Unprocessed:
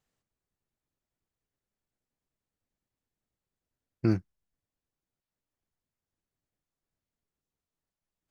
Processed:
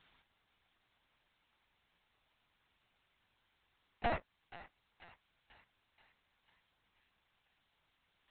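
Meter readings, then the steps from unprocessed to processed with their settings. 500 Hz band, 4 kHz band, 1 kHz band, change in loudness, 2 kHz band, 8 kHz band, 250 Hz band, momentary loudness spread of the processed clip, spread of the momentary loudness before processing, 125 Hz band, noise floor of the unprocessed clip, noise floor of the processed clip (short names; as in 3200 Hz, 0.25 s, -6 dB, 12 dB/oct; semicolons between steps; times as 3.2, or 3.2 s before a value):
-4.5 dB, +3.0 dB, +10.5 dB, -9.0 dB, +4.5 dB, n/a, -19.0 dB, 18 LU, 3 LU, -18.5 dB, under -85 dBFS, -80 dBFS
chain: HPF 550 Hz 12 dB/oct; high shelf 2700 Hz +8.5 dB; in parallel at -1.5 dB: limiter -32 dBFS, peak gain reduction 8.5 dB; on the sum: compressor 6:1, threshold -39 dBFS, peak gain reduction 11 dB; soft clip -37.5 dBFS, distortion -11 dB; ring modulator 360 Hz; on a send: thinning echo 0.487 s, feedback 63%, high-pass 900 Hz, level -13 dB; on the sum: LPC vocoder at 8 kHz pitch kept; gain +14 dB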